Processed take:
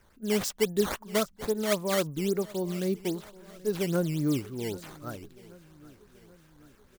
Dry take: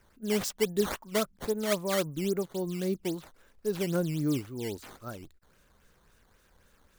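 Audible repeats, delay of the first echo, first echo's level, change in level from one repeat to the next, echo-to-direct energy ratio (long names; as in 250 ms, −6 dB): 3, 781 ms, −21.0 dB, −5.0 dB, −19.5 dB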